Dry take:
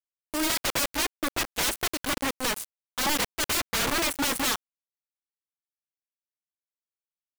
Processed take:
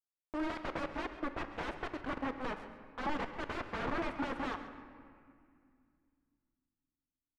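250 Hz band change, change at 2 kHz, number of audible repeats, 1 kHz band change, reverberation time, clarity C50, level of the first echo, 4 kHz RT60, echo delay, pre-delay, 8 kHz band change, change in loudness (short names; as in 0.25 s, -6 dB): -6.5 dB, -12.0 dB, 2, -7.0 dB, 2.2 s, 9.0 dB, -15.0 dB, 1.4 s, 0.135 s, 3 ms, -35.0 dB, -12.5 dB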